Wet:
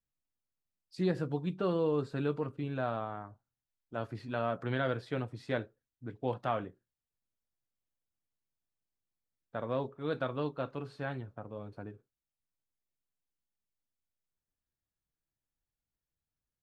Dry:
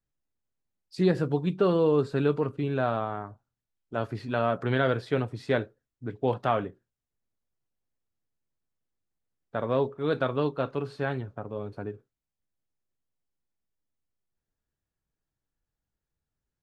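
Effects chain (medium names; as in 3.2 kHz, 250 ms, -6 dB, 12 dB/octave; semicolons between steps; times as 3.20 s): band-stop 410 Hz, Q 12; trim -7 dB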